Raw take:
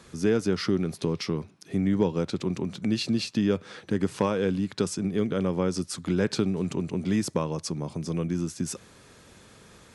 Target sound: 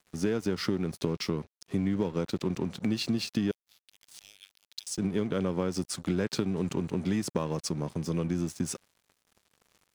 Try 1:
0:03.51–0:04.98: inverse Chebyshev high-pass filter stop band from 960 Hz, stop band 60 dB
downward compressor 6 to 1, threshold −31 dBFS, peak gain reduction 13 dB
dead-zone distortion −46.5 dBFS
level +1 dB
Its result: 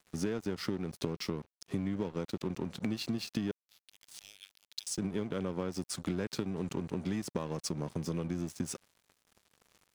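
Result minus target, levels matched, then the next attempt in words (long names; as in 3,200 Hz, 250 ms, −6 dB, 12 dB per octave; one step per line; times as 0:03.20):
downward compressor: peak gain reduction +5.5 dB
0:03.51–0:04.98: inverse Chebyshev high-pass filter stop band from 960 Hz, stop band 60 dB
downward compressor 6 to 1, threshold −24.5 dBFS, peak gain reduction 7.5 dB
dead-zone distortion −46.5 dBFS
level +1 dB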